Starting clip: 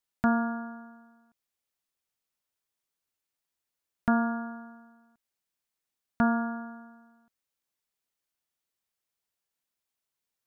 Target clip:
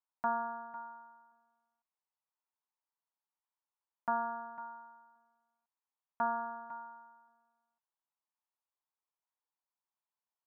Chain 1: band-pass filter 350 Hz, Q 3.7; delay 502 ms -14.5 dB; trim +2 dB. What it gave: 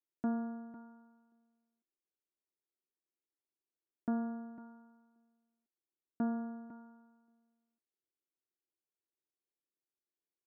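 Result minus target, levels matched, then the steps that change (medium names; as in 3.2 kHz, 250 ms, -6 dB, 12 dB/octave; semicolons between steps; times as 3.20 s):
250 Hz band +13.5 dB
change: band-pass filter 940 Hz, Q 3.7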